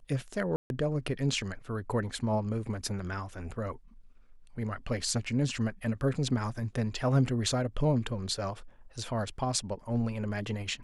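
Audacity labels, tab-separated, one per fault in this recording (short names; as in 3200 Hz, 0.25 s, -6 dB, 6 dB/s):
0.560000	0.700000	gap 0.141 s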